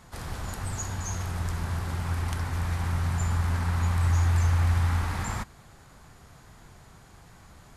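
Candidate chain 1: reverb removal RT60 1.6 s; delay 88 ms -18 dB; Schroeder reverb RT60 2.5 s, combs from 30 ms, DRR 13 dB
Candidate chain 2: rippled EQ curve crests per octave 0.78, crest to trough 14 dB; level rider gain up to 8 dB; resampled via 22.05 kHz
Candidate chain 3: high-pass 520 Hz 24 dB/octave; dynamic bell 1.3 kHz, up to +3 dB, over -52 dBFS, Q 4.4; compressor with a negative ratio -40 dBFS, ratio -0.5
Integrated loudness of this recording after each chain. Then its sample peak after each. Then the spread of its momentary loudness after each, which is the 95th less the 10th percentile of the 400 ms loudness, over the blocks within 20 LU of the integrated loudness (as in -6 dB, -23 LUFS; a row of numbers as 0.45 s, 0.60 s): -33.5 LUFS, -19.0 LUFS, -39.5 LUFS; -15.0 dBFS, -5.5 dBFS, -23.0 dBFS; 8 LU, 11 LU, 16 LU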